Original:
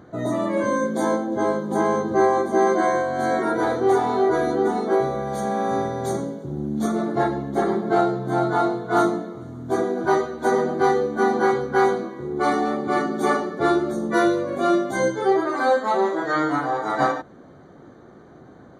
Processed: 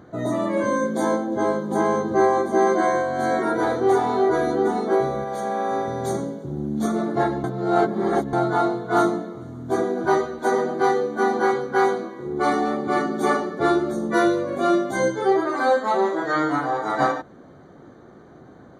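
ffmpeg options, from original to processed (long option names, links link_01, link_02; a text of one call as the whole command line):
ffmpeg -i in.wav -filter_complex "[0:a]asettb=1/sr,asplit=3[link_01][link_02][link_03];[link_01]atrim=end=5.244[link_04];[link_02]atrim=start=5.24:end=5.88,asetpts=PTS-STARTPTS,afade=type=in:duration=0.004:curve=qsin,afade=type=out:start_time=0.636:duration=0.004:curve=qsin,bass=frequency=250:gain=-10,treble=frequency=4000:gain=-4[link_05];[link_03]atrim=start=5.876[link_06];[link_04][link_05]acrossfade=duration=0.004:curve1=hsin:curve2=qsin[link_07];[link_07][link_06]acrossfade=duration=0.004:curve1=qsin:curve2=hsin,asettb=1/sr,asplit=3[link_08][link_09][link_10];[link_08]atrim=end=10.394[link_11];[link_09]atrim=start=10.39:end=12.26,asetpts=PTS-STARTPTS,afade=type=in:duration=0.004:curve=qsin,afade=type=out:start_time=1.866:duration=0.004:curve=qsin,highpass=frequency=220:poles=1[link_12];[link_10]atrim=start=12.256[link_13];[link_11][link_12]acrossfade=duration=0.004:curve1=hsin:curve2=qsin[link_14];[link_14][link_13]acrossfade=duration=0.004:curve1=qsin:curve2=hsin,asplit=3[link_15][link_16][link_17];[link_15]atrim=end=7.442[link_18];[link_16]atrim=start=7.438:end=8.332,asetpts=PTS-STARTPTS,areverse[link_19];[link_17]atrim=start=8.328[link_20];[link_18][link_19]acrossfade=duration=0.004:curve1=hsin:curve2=hsin[link_21];[link_21][link_20]acrossfade=duration=0.004:curve1=hsin:curve2=hsin" out.wav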